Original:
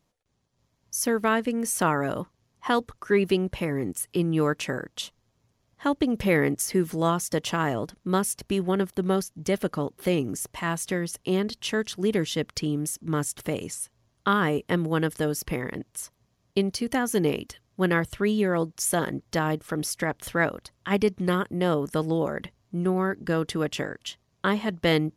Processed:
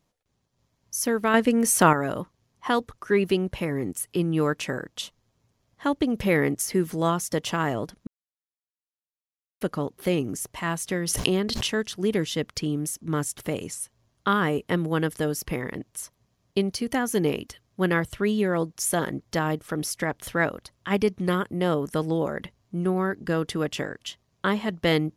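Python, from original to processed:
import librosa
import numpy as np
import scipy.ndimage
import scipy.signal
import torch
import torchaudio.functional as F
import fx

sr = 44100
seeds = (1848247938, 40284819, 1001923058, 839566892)

y = fx.pre_swell(x, sr, db_per_s=22.0, at=(11.06, 11.66), fade=0.02)
y = fx.edit(y, sr, fx.clip_gain(start_s=1.34, length_s=0.59, db=6.0),
    fx.silence(start_s=8.07, length_s=1.54), tone=tone)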